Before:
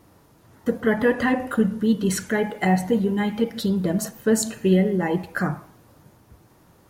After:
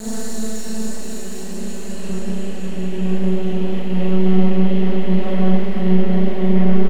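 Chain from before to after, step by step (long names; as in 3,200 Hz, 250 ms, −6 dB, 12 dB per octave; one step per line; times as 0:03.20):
high-shelf EQ 4,900 Hz −7.5 dB
comb filter 4.1 ms, depth 65%
extreme stretch with random phases 19×, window 0.50 s, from 0:04.46
half-wave rectification
four-comb reverb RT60 0.63 s, combs from 29 ms, DRR −4.5 dB
level −4 dB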